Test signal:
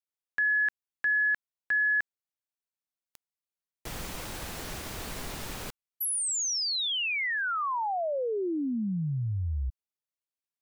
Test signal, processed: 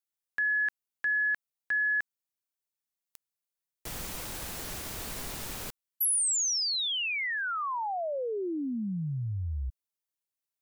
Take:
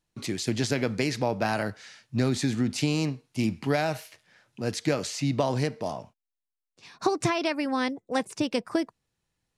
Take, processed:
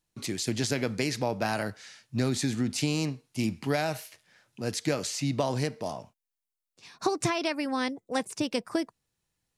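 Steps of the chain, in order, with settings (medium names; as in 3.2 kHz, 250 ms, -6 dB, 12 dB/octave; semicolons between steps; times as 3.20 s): treble shelf 6.2 kHz +7.5 dB; trim -2.5 dB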